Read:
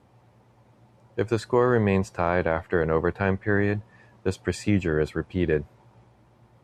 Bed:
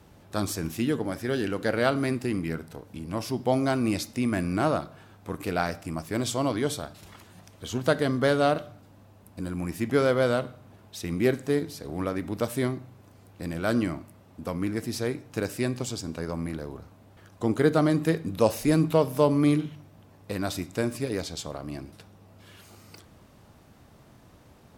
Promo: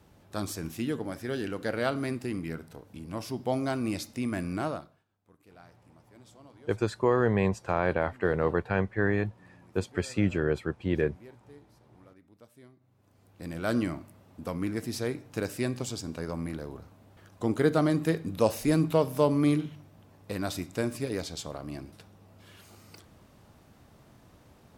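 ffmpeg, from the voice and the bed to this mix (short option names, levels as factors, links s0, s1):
-filter_complex "[0:a]adelay=5500,volume=0.668[s0];[1:a]volume=10,afade=t=out:st=4.53:d=0.51:silence=0.0749894,afade=t=in:st=12.79:d=0.96:silence=0.0562341[s1];[s0][s1]amix=inputs=2:normalize=0"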